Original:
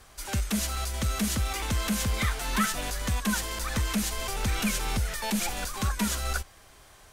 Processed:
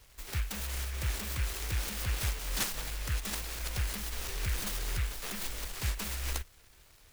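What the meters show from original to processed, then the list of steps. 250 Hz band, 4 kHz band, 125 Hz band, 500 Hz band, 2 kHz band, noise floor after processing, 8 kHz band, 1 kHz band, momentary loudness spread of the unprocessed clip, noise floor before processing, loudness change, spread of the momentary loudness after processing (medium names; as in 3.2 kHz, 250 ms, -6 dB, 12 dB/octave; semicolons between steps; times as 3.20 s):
-16.5 dB, -6.0 dB, -5.0 dB, -9.0 dB, -7.5 dB, -59 dBFS, -6.5 dB, -12.0 dB, 4 LU, -54 dBFS, -6.0 dB, 4 LU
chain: static phaser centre 1.2 kHz, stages 8; delay time shaken by noise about 1.9 kHz, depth 0.44 ms; trim -3 dB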